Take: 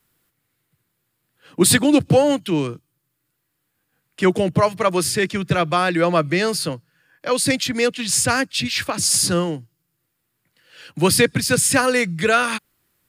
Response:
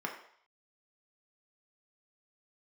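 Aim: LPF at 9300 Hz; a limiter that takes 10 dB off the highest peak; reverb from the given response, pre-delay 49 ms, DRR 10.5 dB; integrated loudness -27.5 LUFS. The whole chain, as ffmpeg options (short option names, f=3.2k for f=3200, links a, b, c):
-filter_complex "[0:a]lowpass=9.3k,alimiter=limit=-11dB:level=0:latency=1,asplit=2[a][b];[1:a]atrim=start_sample=2205,adelay=49[c];[b][c]afir=irnorm=-1:irlink=0,volume=-14.5dB[d];[a][d]amix=inputs=2:normalize=0,volume=-6.5dB"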